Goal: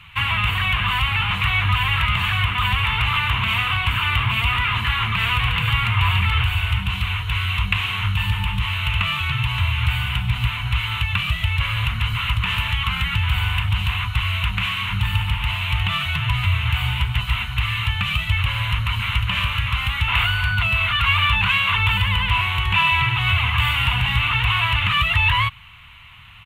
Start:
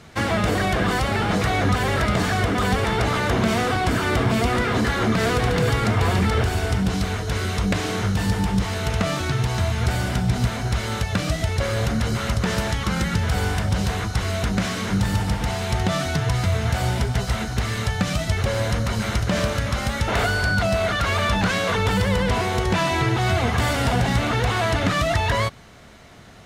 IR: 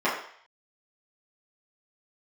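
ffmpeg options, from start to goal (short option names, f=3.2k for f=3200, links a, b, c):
-af "firequalizer=gain_entry='entry(100,0);entry(220,-19);entry(310,-25);entry(590,-26);entry(1000,3);entry(1600,-5);entry(2700,13);entry(5100,-23);entry(7300,-15);entry(14000,0)':delay=0.05:min_phase=1,volume=2.5dB"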